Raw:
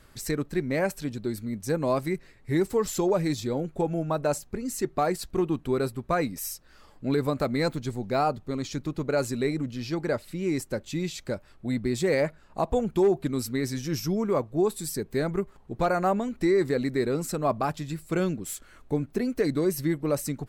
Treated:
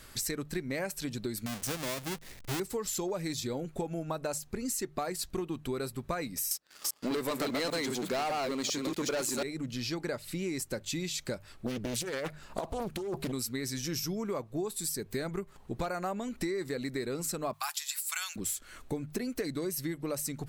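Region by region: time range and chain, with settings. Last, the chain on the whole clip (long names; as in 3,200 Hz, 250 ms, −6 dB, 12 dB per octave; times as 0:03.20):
0:01.46–0:02.60: each half-wave held at its own peak + downward compressor 1.5 to 1, threshold −48 dBFS
0:06.51–0:09.43: delay that plays each chunk backwards 199 ms, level −3 dB + high-pass filter 250 Hz + leveller curve on the samples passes 3
0:11.66–0:13.32: high-shelf EQ 12,000 Hz +5 dB + compressor whose output falls as the input rises −28 dBFS + highs frequency-modulated by the lows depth 0.98 ms
0:17.53–0:18.36: Butterworth high-pass 780 Hz 48 dB per octave + spectral tilt +4 dB per octave
whole clip: high-shelf EQ 2,100 Hz +9.5 dB; mains-hum notches 50/100/150 Hz; downward compressor 6 to 1, threshold −33 dBFS; level +1 dB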